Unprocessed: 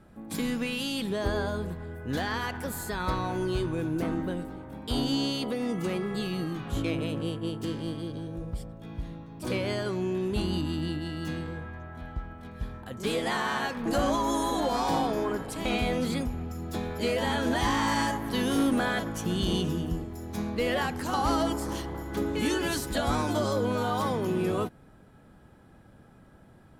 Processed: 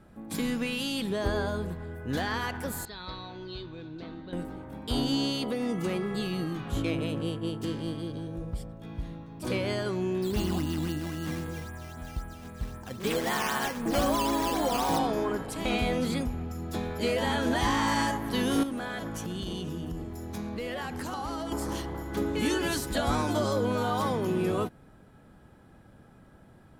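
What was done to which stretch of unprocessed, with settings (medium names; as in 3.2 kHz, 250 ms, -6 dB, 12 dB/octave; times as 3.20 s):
2.85–4.33 s: four-pole ladder low-pass 4.3 kHz, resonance 75%
10.22–14.99 s: decimation with a swept rate 8× 3.8 Hz
18.63–21.52 s: compression, threshold -31 dBFS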